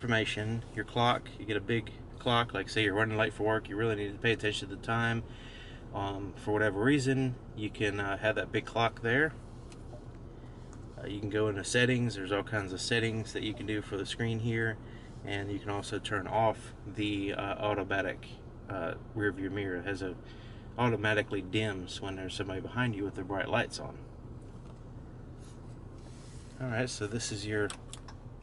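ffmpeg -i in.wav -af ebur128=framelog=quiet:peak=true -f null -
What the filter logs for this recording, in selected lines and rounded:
Integrated loudness:
  I:         -32.7 LUFS
  Threshold: -43.7 LUFS
Loudness range:
  LRA:         6.8 LU
  Threshold: -53.7 LUFS
  LRA low:   -38.1 LUFS
  LRA high:  -31.3 LUFS
True peak:
  Peak:      -12.6 dBFS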